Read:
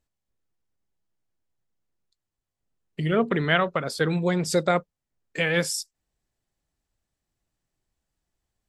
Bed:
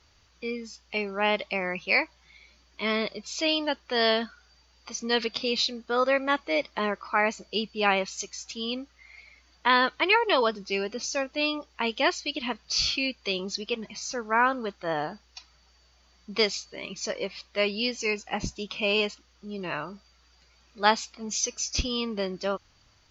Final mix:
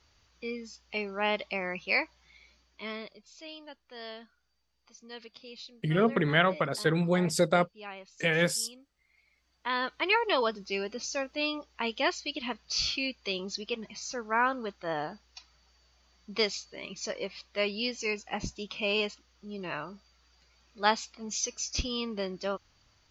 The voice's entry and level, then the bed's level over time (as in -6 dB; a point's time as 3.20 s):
2.85 s, -2.5 dB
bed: 2.49 s -4 dB
3.37 s -19.5 dB
9.06 s -19.5 dB
10.12 s -4 dB